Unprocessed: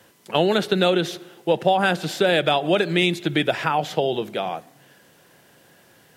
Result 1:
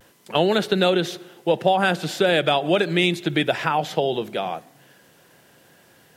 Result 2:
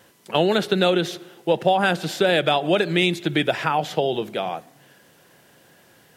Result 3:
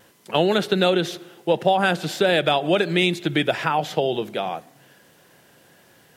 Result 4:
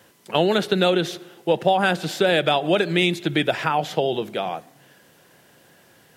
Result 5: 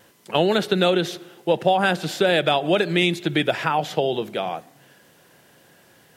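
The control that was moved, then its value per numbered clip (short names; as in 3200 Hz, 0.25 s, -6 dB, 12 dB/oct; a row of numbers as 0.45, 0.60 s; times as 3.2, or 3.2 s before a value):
vibrato, rate: 0.32, 4, 1.4, 8.4, 2.2 Hz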